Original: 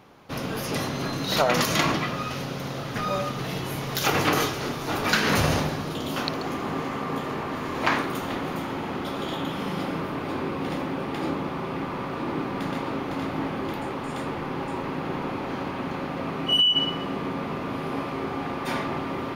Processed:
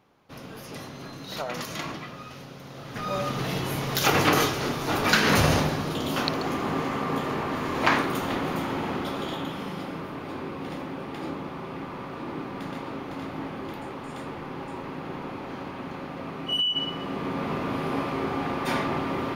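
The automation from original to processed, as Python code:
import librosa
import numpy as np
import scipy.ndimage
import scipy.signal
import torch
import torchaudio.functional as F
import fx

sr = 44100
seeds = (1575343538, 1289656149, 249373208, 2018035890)

y = fx.gain(x, sr, db=fx.line((2.66, -11.0), (3.34, 1.5), (8.88, 1.5), (9.82, -5.5), (16.73, -5.5), (17.51, 1.5)))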